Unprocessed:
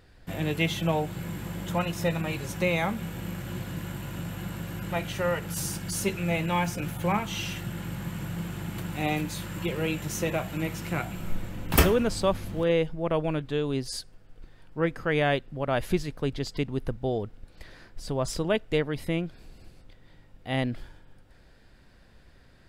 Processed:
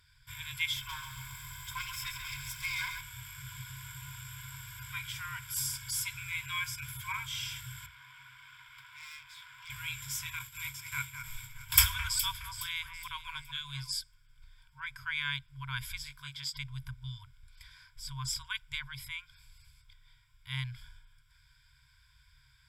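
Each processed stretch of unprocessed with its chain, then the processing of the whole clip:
0:00.76–0:03.01: lower of the sound and its delayed copy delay 1.9 ms + feedback echo at a low word length 136 ms, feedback 55%, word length 9 bits, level −7 dB
0:07.86–0:09.70: three-way crossover with the lows and the highs turned down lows −24 dB, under 250 Hz, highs −18 dB, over 3,600 Hz + tube saturation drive 37 dB, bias 0.45
0:10.39–0:13.91: downward expander −30 dBFS + high-shelf EQ 3,600 Hz +6.5 dB + delay that swaps between a low-pass and a high-pass 209 ms, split 2,500 Hz, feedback 59%, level −7.5 dB
0:16.04–0:16.54: high-pass filter 310 Hz 6 dB per octave + double-tracking delay 20 ms −3.5 dB
whole clip: guitar amp tone stack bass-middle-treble 5-5-5; brick-wall band-stop 140–920 Hz; EQ curve with evenly spaced ripples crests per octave 1.7, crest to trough 13 dB; level +4 dB

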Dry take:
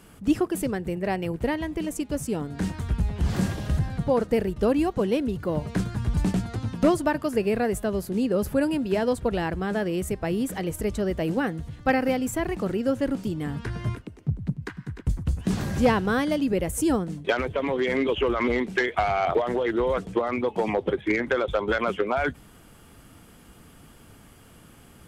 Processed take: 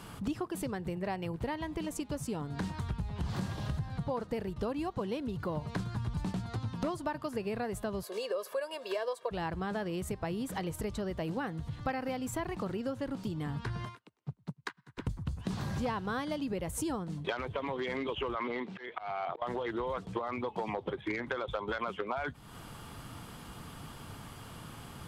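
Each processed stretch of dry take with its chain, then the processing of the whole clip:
0:08.03–0:09.31: high-pass filter 400 Hz 24 dB per octave + comb filter 1.8 ms, depth 76%
0:13.85–0:14.98: high-pass filter 770 Hz 6 dB per octave + expander for the loud parts 2.5 to 1, over −54 dBFS
0:18.35–0:19.42: band-pass filter 180–3,900 Hz + volume swells 602 ms
whole clip: octave-band graphic EQ 125/1,000/4,000 Hz +7/+9/+7 dB; downward compressor 4 to 1, threshold −35 dBFS

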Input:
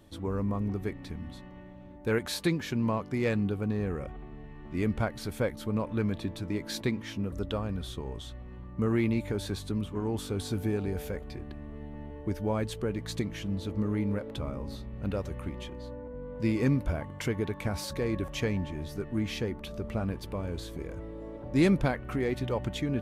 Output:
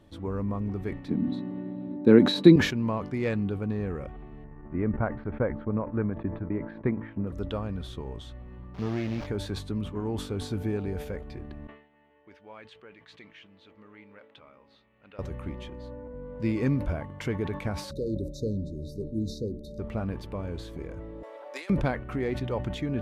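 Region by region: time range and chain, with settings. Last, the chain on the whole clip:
0:01.08–0:02.56: high-pass filter 110 Hz 24 dB per octave + high-shelf EQ 6,900 Hz −9 dB + hollow resonant body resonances 260/3,900 Hz, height 18 dB, ringing for 20 ms
0:04.44–0:07.27: low-pass filter 1,800 Hz 24 dB per octave + transient designer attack +3 dB, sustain −10 dB
0:08.74–0:09.27: linear delta modulator 32 kbit/s, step −33.5 dBFS + tube saturation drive 23 dB, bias 0.75 + bit-depth reduction 10 bits, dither none
0:11.67–0:15.19: resonant band-pass 2,800 Hz, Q 1.3 + high-shelf EQ 2,700 Hz −10 dB
0:17.91–0:19.79: linear-phase brick-wall band-stop 620–3,600 Hz + mains-hum notches 60/120/180/240/300/360 Hz
0:21.23–0:21.70: high-pass filter 520 Hz 24 dB per octave + spectral tilt +2 dB per octave + compressor whose output falls as the input rises −38 dBFS, ratio −0.5
whole clip: high-shelf EQ 5,600 Hz −11 dB; level that may fall only so fast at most 100 dB per second

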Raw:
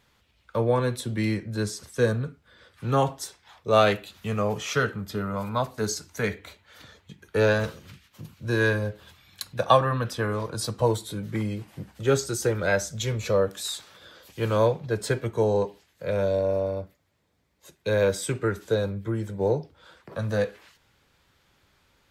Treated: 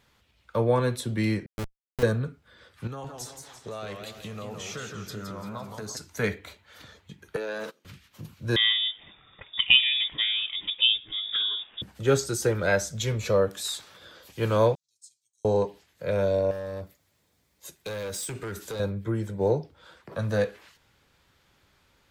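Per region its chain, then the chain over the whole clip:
0:01.46–0:02.03: high-pass filter 120 Hz 6 dB per octave + comparator with hysteresis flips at −22 dBFS
0:02.87–0:05.97: parametric band 6,500 Hz +4 dB 0.92 octaves + downward compressor, threshold −35 dBFS + feedback echo with a swinging delay time 171 ms, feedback 44%, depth 173 cents, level −5.5 dB
0:07.36–0:07.85: noise gate −36 dBFS, range −19 dB + high-pass filter 240 Hz 24 dB per octave + downward compressor, threshold −30 dBFS
0:08.56–0:11.82: treble cut that deepens with the level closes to 1,500 Hz, closed at −21.5 dBFS + voice inversion scrambler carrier 3,600 Hz
0:14.75–0:15.45: inverse Chebyshev high-pass filter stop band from 1,700 Hz, stop band 70 dB + high-frequency loss of the air 110 metres
0:16.51–0:18.80: high-shelf EQ 4,200 Hz +11 dB + downward compressor 3 to 1, threshold −30 dBFS + hard clipping −30.5 dBFS
whole clip: no processing

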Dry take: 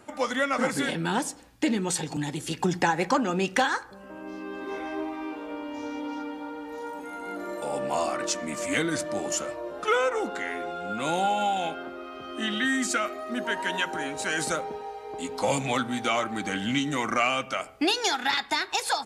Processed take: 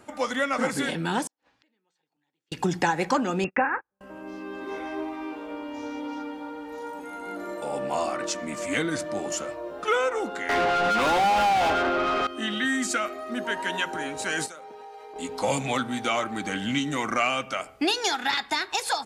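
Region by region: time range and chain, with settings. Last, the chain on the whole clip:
0:01.27–0:02.52: high-pass filter 900 Hz 6 dB per octave + gate with flip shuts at −36 dBFS, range −39 dB + high-frequency loss of the air 170 metres
0:03.44–0:04.01: linear-phase brick-wall low-pass 2,800 Hz + noise gate −35 dBFS, range −39 dB
0:07.53–0:09.86: high-shelf EQ 6,800 Hz −5 dB + bit-depth reduction 12 bits, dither none
0:10.49–0:12.27: high-shelf EQ 4,600 Hz −9.5 dB + mid-hump overdrive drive 31 dB, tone 2,800 Hz, clips at −15.5 dBFS
0:14.46–0:15.16: high-pass filter 440 Hz 6 dB per octave + downward compressor 8 to 1, threshold −39 dBFS
whole clip: no processing

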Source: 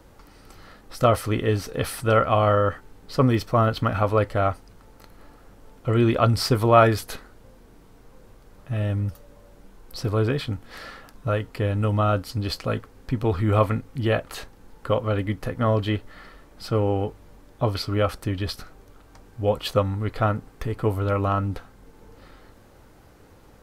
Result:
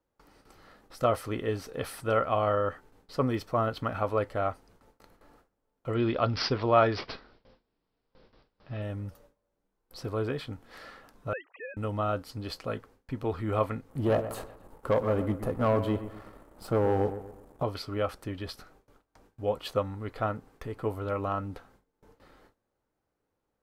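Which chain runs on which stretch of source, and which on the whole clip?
0:05.95–0:08.82: bass and treble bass +1 dB, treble +8 dB + bad sample-rate conversion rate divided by 4×, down none, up filtered
0:11.33–0:11.77: three sine waves on the formant tracks + high-pass filter 960 Hz
0:13.90–0:17.63: flat-topped bell 3,100 Hz −10 dB 2.3 octaves + leveller curve on the samples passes 2 + delay with a low-pass on its return 121 ms, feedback 40%, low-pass 2,500 Hz, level −11.5 dB
whole clip: low-shelf EQ 220 Hz −10 dB; noise gate with hold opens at −42 dBFS; tilt shelving filter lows +3 dB, about 1,300 Hz; level −7 dB

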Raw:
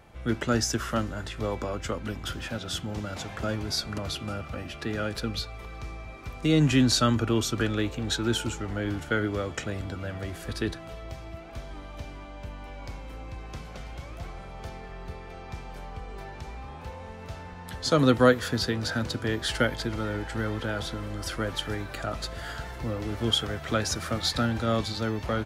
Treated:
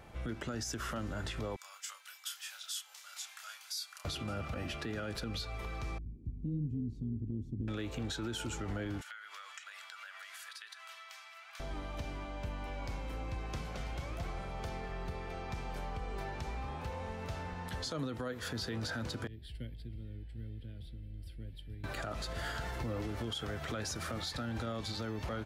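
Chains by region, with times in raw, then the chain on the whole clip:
0:01.56–0:04.05: high-pass filter 860 Hz 24 dB per octave + first difference + double-tracking delay 29 ms −5.5 dB
0:05.98–0:07.68: variable-slope delta modulation 64 kbit/s + inverse Chebyshev low-pass filter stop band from 540 Hz + amplitude modulation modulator 170 Hz, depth 20%
0:09.01–0:11.60: high-pass filter 1,200 Hz 24 dB per octave + downward compressor 16 to 1, threshold −44 dBFS
0:19.27–0:21.84: guitar amp tone stack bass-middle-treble 10-0-1 + phaser with its sweep stopped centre 2,800 Hz, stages 4
whole clip: downward compressor 3 to 1, threshold −32 dBFS; brickwall limiter −29.5 dBFS

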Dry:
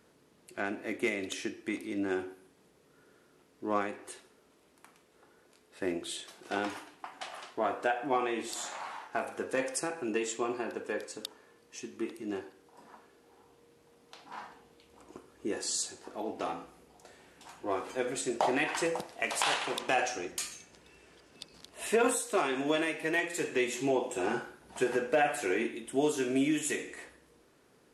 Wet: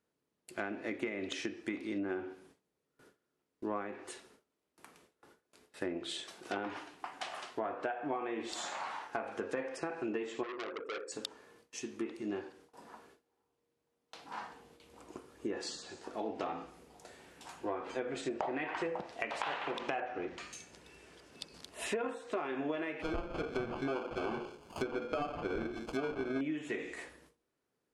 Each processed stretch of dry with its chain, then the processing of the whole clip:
0:10.43–0:11.12: spectral envelope exaggerated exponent 2 + saturating transformer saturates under 3,100 Hz
0:20.00–0:20.53: spike at every zero crossing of −35 dBFS + low-pass filter 1,900 Hz
0:23.02–0:26.41: sample-rate reduction 1,900 Hz + mains-hum notches 60/120/180/240/300/360/420/480 Hz
whole clip: treble cut that deepens with the level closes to 2,200 Hz, closed at −29 dBFS; noise gate with hold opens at −50 dBFS; downward compressor, threshold −34 dBFS; level +1 dB

